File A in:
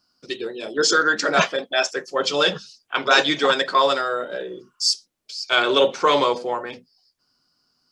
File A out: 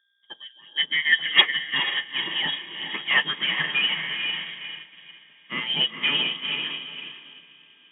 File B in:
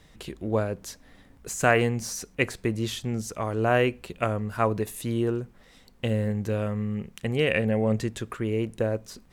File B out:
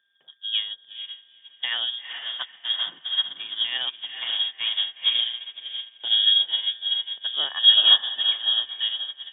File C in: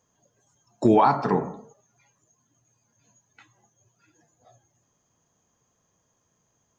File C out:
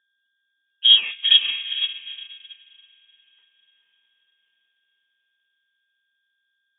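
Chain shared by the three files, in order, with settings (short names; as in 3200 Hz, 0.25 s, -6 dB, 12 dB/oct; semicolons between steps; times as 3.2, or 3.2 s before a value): on a send: diffused feedback echo 0.457 s, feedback 55%, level -4 dB; on the sum: whine 1900 Hz -46 dBFS; in parallel at -0.5 dB: limiter -12.5 dBFS; on the sum: hum 60 Hz, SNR 31 dB; sample leveller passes 1; small resonant body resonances 200/1700 Hz, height 15 dB, ringing for 60 ms; inverted band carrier 3500 Hz; elliptic high-pass 150 Hz; upward expander 2.5:1, over -21 dBFS; gain -6 dB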